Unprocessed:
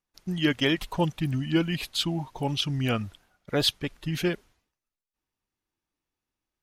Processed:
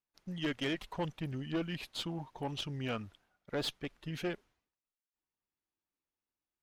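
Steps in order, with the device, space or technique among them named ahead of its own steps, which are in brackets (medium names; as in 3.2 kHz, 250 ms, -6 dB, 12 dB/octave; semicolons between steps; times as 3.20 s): tube preamp driven hard (valve stage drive 22 dB, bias 0.55; bass shelf 130 Hz -6 dB; treble shelf 5 kHz -8.5 dB); trim -5.5 dB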